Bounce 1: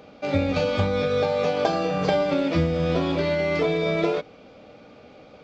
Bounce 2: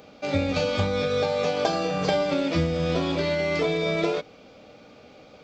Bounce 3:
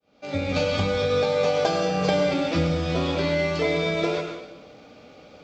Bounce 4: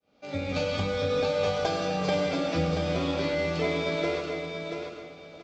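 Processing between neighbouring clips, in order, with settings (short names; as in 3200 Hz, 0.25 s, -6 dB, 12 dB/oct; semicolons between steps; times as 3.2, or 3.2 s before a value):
high shelf 4700 Hz +10.5 dB; gain -2 dB
opening faded in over 0.53 s; plate-style reverb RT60 0.94 s, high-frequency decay 0.95×, pre-delay 85 ms, DRR 4.5 dB
feedback echo 0.682 s, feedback 24%, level -6 dB; gain -5 dB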